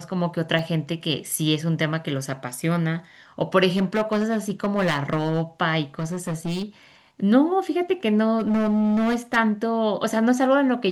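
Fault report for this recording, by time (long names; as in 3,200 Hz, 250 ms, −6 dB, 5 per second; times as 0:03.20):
0:00.59: drop-out 2.4 ms
0:03.76–0:05.41: clipping −17 dBFS
0:05.99–0:06.64: clipping −23.5 dBFS
0:08.38–0:09.37: clipping −18 dBFS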